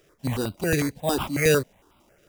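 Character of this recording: aliases and images of a low sample rate 4300 Hz, jitter 0%; notches that jump at a steady rate 11 Hz 250–1800 Hz

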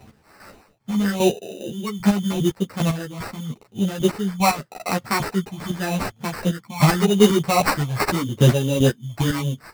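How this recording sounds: chopped level 2.5 Hz, depth 60%, duty 25%; phasing stages 8, 0.85 Hz, lowest notch 430–4100 Hz; aliases and images of a low sample rate 3300 Hz, jitter 0%; a shimmering, thickened sound

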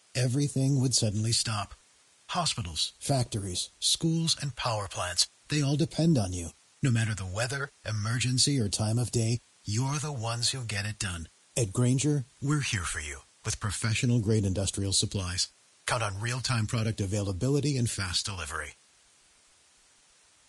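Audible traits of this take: phasing stages 2, 0.36 Hz, lowest notch 230–1800 Hz; a quantiser's noise floor 10-bit, dither triangular; Vorbis

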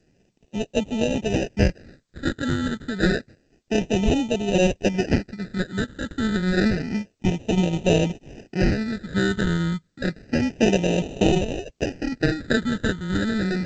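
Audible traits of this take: aliases and images of a low sample rate 1100 Hz, jitter 0%; phasing stages 8, 0.29 Hz, lowest notch 750–1500 Hz; tremolo saw down 0.66 Hz, depth 50%; G.722

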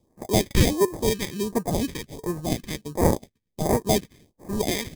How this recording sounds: aliases and images of a low sample rate 1400 Hz, jitter 0%; phasing stages 2, 1.4 Hz, lowest notch 690–3000 Hz

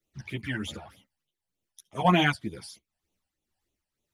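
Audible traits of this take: phasing stages 12, 3.3 Hz, lowest notch 360–1700 Hz; tremolo triangle 2 Hz, depth 50%; a shimmering, thickened sound

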